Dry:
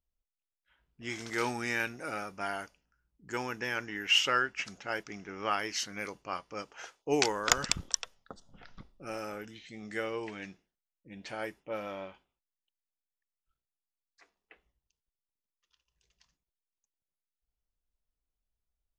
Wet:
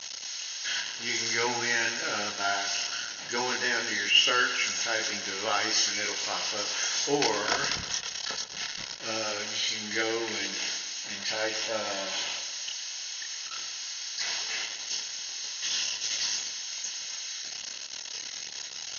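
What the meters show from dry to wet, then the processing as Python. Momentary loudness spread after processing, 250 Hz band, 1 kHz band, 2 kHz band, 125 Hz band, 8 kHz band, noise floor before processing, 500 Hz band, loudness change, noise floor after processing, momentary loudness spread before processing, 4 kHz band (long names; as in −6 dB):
9 LU, +1.5 dB, +3.5 dB, +6.5 dB, −1.0 dB, +10.0 dB, below −85 dBFS, +3.5 dB, +4.5 dB, −40 dBFS, 18 LU, +9.5 dB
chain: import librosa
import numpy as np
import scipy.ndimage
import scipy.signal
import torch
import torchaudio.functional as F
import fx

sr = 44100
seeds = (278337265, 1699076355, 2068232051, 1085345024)

p1 = x + 0.5 * 10.0 ** (-18.5 / 20.0) * np.diff(np.sign(x), prepend=np.sign(x[:1]))
p2 = fx.low_shelf(p1, sr, hz=460.0, db=-7.0)
p3 = fx.rider(p2, sr, range_db=10, speed_s=0.5)
p4 = p2 + F.gain(torch.from_numpy(p3), -2.5).numpy()
p5 = 10.0 ** (-15.5 / 20.0) * np.tanh(p4 / 10.0 ** (-15.5 / 20.0))
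p6 = fx.chorus_voices(p5, sr, voices=2, hz=0.7, base_ms=28, depth_ms=1.5, mix_pct=40)
p7 = fx.brickwall_lowpass(p6, sr, high_hz=6700.0)
p8 = fx.notch_comb(p7, sr, f0_hz=1200.0)
p9 = p8 + fx.echo_feedback(p8, sr, ms=116, feedback_pct=56, wet_db=-11.5, dry=0)
p10 = fx.attack_slew(p9, sr, db_per_s=150.0)
y = F.gain(torch.from_numpy(p10), 5.0).numpy()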